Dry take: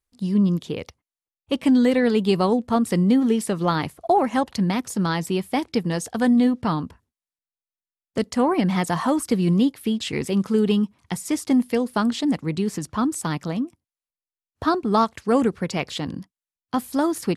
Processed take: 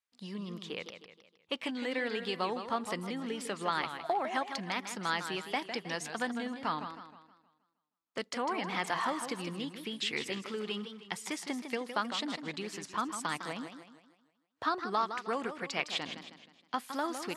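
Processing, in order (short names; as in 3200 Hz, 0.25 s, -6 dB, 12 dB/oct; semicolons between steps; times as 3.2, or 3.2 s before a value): compressor, threshold -19 dBFS, peak gain reduction 6 dB; band-pass 2200 Hz, Q 0.63; warbling echo 0.157 s, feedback 43%, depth 162 cents, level -9 dB; gain -2 dB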